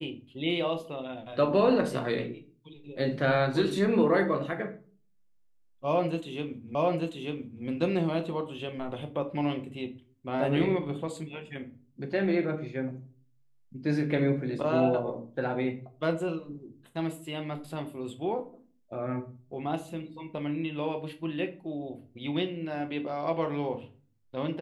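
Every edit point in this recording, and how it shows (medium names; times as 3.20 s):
6.75 s: repeat of the last 0.89 s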